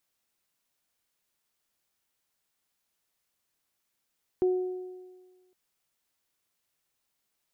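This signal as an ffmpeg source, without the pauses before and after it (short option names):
-f lavfi -i "aevalsrc='0.1*pow(10,-3*t/1.46)*sin(2*PI*367*t)+0.0112*pow(10,-3*t/1.45)*sin(2*PI*734*t)':d=1.11:s=44100"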